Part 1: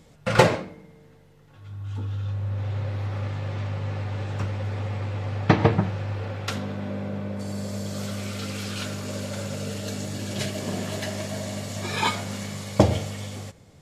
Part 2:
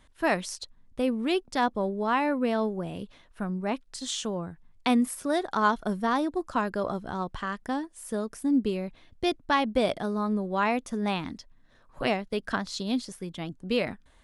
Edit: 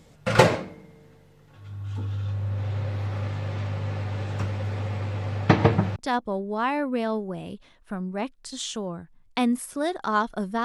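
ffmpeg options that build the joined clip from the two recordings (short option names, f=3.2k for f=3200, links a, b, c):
-filter_complex "[0:a]apad=whole_dur=10.64,atrim=end=10.64,atrim=end=5.962[a];[1:a]atrim=start=1.448:end=6.13[b];[a][b]acrossfade=d=0.004:c1=hsin:c2=hsin"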